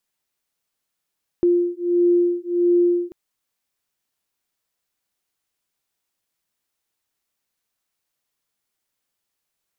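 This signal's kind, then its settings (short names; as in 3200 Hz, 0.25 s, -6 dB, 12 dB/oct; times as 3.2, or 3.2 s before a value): beating tones 349 Hz, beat 1.5 Hz, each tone -18.5 dBFS 1.69 s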